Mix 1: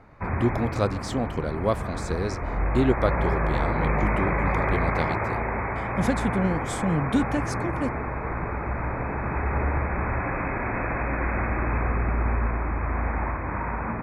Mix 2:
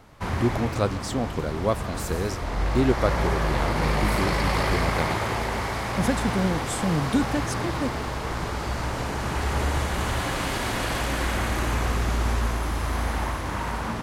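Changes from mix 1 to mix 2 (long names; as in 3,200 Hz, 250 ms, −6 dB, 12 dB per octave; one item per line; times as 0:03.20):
background: remove linear-phase brick-wall low-pass 2,600 Hz
master: add high-shelf EQ 9,600 Hz +12 dB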